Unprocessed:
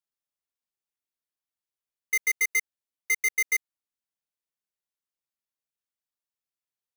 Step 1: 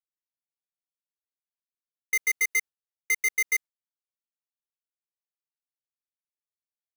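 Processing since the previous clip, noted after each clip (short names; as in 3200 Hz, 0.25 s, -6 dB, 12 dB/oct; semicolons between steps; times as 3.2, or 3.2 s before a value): gate with hold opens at -31 dBFS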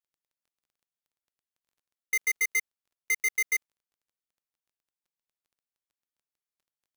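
crackle 15/s -57 dBFS; gain -2 dB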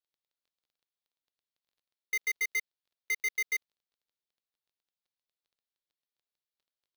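graphic EQ 500/4000/8000 Hz +4/+10/-7 dB; gain -6 dB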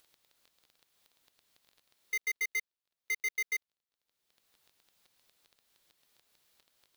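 upward compressor, threshold -48 dBFS; gain -2 dB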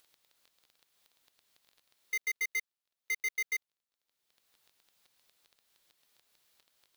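low shelf 490 Hz -3.5 dB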